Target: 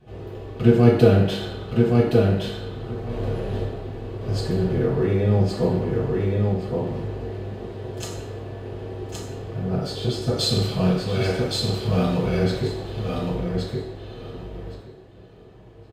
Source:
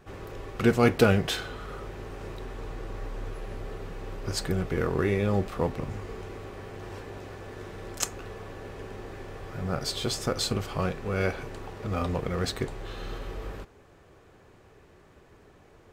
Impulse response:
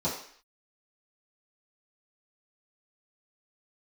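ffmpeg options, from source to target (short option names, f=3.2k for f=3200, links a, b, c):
-filter_complex "[0:a]asettb=1/sr,asplit=3[a][b][c];[a]atrim=end=3.094[d];[b]atrim=start=3.09:end=3.65,asetpts=PTS-STARTPTS,afade=t=in:d=0.004:c=qsin,afade=t=out:st=0.556:d=0.004:c=qsin,acontrast=88[e];[c]atrim=start=3.646[f];[d][e]acrossfade=d=0.004:c1=hsin:c2=qsin[g];[g][f]acrossfade=d=0.004:c1=qsin:c2=hsin,asettb=1/sr,asplit=3[h][i][j];[h]atrim=end=10.374[k];[i]atrim=start=10.37:end=12.23,asetpts=PTS-STARTPTS,afade=t=in:d=0.004:c=qsin,afade=t=out:st=1.856:d=0.004:c=qsin,highshelf=f=2k:g=10.5[l];[j]atrim=start=12.226[m];[k][l]acrossfade=d=0.004:c1=hsin:c2=qsin[n];[n][m]acrossfade=d=0.004:c1=qsin:c2=hsin,aecho=1:1:1119|2238|3357:0.708|0.106|0.0159[o];[1:a]atrim=start_sample=2205,asetrate=31311,aresample=44100[p];[o][p]afir=irnorm=-1:irlink=0,volume=-10.5dB"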